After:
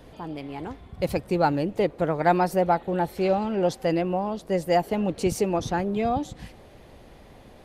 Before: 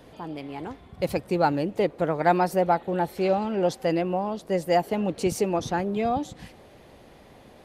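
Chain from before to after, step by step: bass shelf 65 Hz +12 dB

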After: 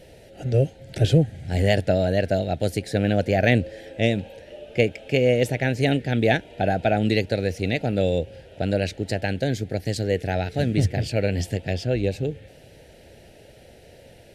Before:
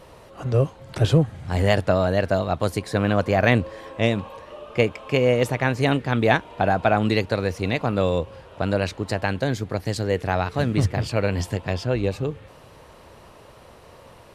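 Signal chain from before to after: Butterworth band-stop 1.1 kHz, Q 1.2

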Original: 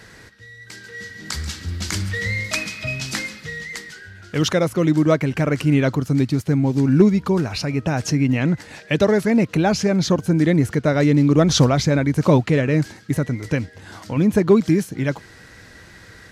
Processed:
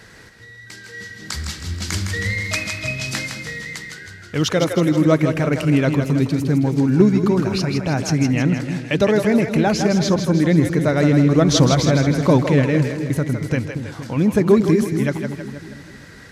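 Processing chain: two-band feedback delay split 400 Hz, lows 233 ms, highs 160 ms, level -6.5 dB

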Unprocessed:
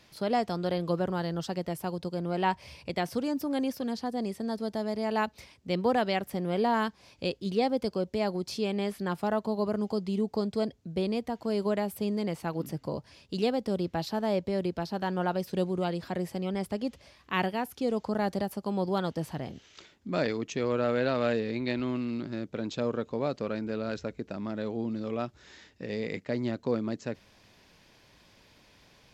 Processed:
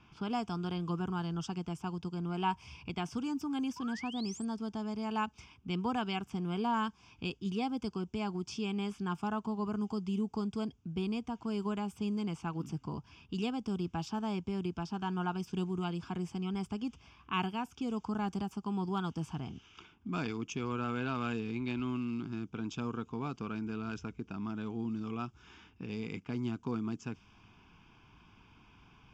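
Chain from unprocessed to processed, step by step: static phaser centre 2.8 kHz, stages 8; in parallel at +1 dB: compression, threshold -47 dBFS, peak gain reduction 20.5 dB; on the sum: painted sound rise, 3.76–4.45 s, 930–9000 Hz -44 dBFS; level-controlled noise filter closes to 2.3 kHz, open at -27.5 dBFS; trim -3 dB

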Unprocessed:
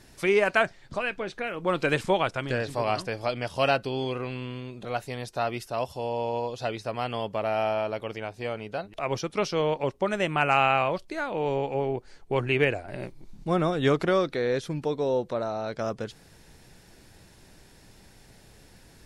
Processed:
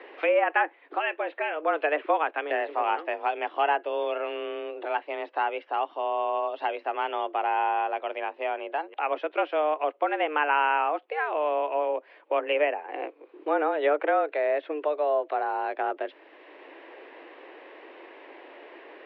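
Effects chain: mistuned SSB +150 Hz 190–2800 Hz; low-pass that closes with the level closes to 2.2 kHz, closed at -20.5 dBFS; three bands compressed up and down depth 40%; trim +1 dB

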